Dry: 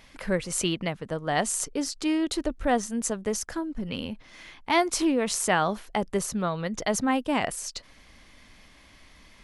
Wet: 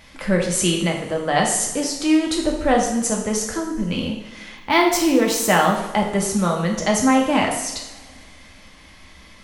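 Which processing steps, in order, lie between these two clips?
two-slope reverb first 0.74 s, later 2.4 s, from -18 dB, DRR -0.5 dB; 4.57–5.76 decimation joined by straight lines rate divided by 2×; gain +4.5 dB

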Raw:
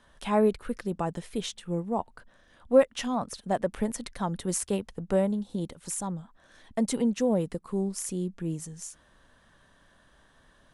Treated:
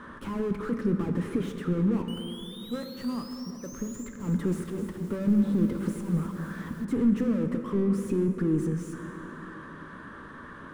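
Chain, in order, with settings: soft clip -20.5 dBFS, distortion -11 dB; compressor, threshold -27 dBFS, peak gain reduction 5 dB; 2.08–4.08 painted sound rise 2900–7400 Hz -28 dBFS; bell 1100 Hz +14.5 dB 1.9 oct; overdrive pedal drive 34 dB, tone 2400 Hz, clips at -17.5 dBFS; auto swell 0.164 s; EQ curve 140 Hz 0 dB, 240 Hz +5 dB, 470 Hz -8 dB, 720 Hz -27 dB, 1200 Hz -15 dB, 4400 Hz -23 dB, 9400 Hz -15 dB; plate-style reverb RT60 3.5 s, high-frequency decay 0.55×, DRR 5.5 dB; 3.94–6.85 lo-fi delay 0.26 s, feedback 55%, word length 8-bit, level -9.5 dB

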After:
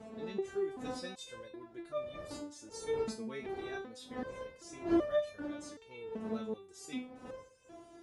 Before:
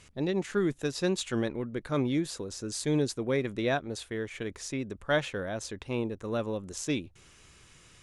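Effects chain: wind noise 440 Hz -30 dBFS; HPF 69 Hz 12 dB/oct; stepped resonator 2.6 Hz 220–600 Hz; gain +3 dB

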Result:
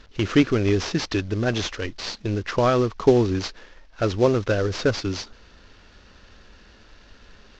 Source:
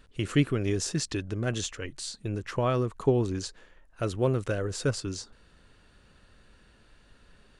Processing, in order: CVSD 32 kbps; bell 140 Hz -11 dB 0.34 oct; gain +8.5 dB

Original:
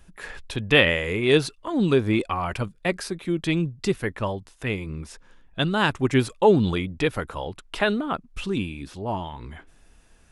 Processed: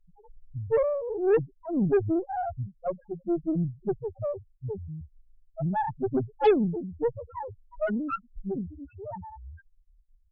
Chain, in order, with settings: low-pass sweep 830 Hz -> 5200 Hz, 7.19–10.12; loudest bins only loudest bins 1; added harmonics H 5 -24 dB, 8 -23 dB, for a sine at -11.5 dBFS

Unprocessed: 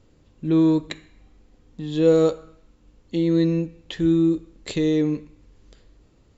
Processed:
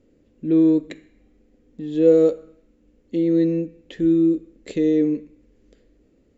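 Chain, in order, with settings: graphic EQ 125/250/500/1000/2000/4000 Hz -4/+10/+9/-8/+5/-4 dB; gain -7 dB

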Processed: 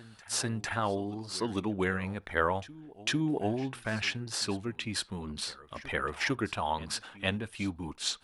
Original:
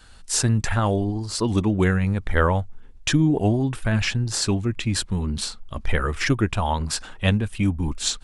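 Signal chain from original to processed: HPF 390 Hz 6 dB/oct; bell 7300 Hz -7 dB 0.56 oct; reverse echo 0.451 s -19 dB; reverb, pre-delay 7 ms, DRR 23.5 dB; gain -5.5 dB

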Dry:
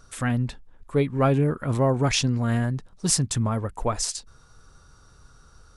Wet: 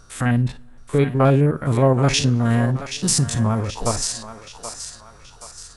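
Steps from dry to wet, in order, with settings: stepped spectrum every 50 ms; thinning echo 0.777 s, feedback 50%, high-pass 670 Hz, level -9 dB; two-slope reverb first 0.32 s, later 2.7 s, from -22 dB, DRR 16.5 dB; gain +5.5 dB

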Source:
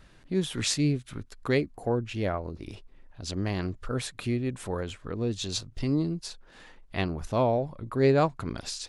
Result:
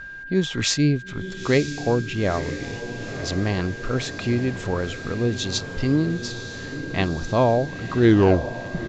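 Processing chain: tape stop at the end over 0.96 s; whine 1600 Hz -41 dBFS; on a send: diffused feedback echo 0.954 s, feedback 64%, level -11 dB; on the sum: downsampling 16000 Hz; gain +6 dB

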